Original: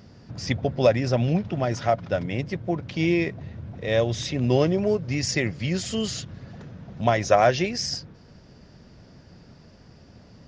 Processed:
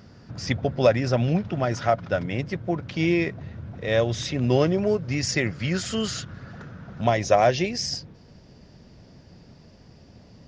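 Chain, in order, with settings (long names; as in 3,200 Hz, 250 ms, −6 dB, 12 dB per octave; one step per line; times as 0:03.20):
parametric band 1,400 Hz +4.5 dB 0.61 octaves, from 0:05.51 +11.5 dB, from 0:07.07 −4.5 dB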